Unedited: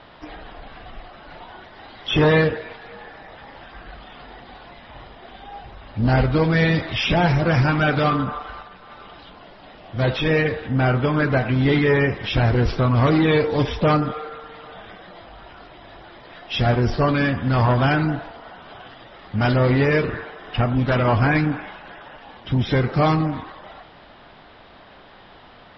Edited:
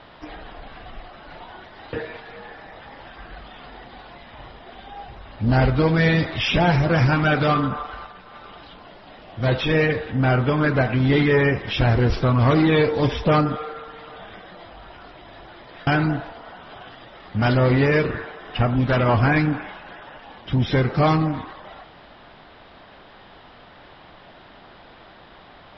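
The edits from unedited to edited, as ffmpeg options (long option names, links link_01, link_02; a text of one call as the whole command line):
ffmpeg -i in.wav -filter_complex "[0:a]asplit=3[link_01][link_02][link_03];[link_01]atrim=end=1.932[link_04];[link_02]atrim=start=2.488:end=16.432[link_05];[link_03]atrim=start=17.858[link_06];[link_04][link_05]acrossfade=duration=0.004:curve1=hsin:curve2=hsin[link_07];[link_07][link_06]acrossfade=duration=0.004:curve1=hsin:curve2=hsin" out.wav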